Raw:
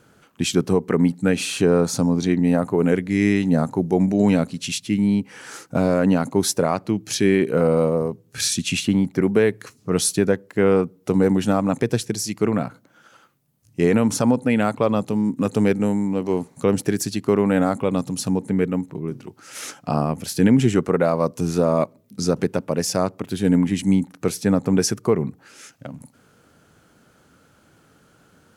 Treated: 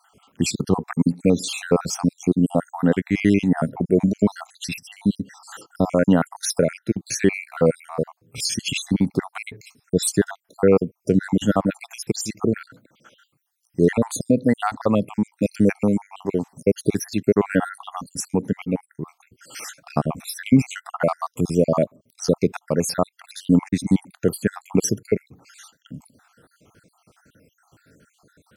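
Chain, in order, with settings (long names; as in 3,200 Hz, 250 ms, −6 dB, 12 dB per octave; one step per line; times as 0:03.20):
time-frequency cells dropped at random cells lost 64%
level +2.5 dB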